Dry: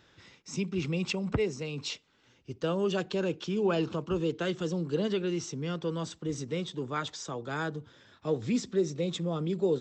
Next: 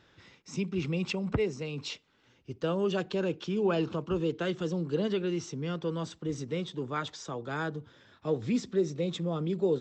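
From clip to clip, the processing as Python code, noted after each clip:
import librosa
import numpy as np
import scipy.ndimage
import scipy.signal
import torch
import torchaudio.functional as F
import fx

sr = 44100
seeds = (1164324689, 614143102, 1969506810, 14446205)

y = fx.high_shelf(x, sr, hz=6700.0, db=-9.0)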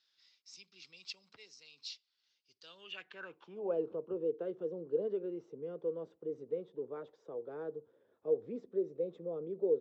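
y = fx.filter_sweep_bandpass(x, sr, from_hz=4700.0, to_hz=470.0, start_s=2.64, end_s=3.77, q=4.3)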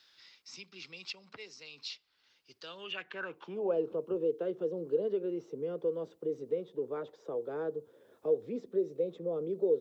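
y = fx.band_squash(x, sr, depth_pct=40)
y = y * 10.0 ** (4.5 / 20.0)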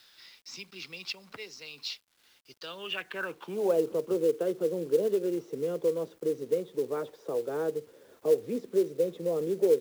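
y = fx.quant_companded(x, sr, bits=6)
y = y * 10.0 ** (5.0 / 20.0)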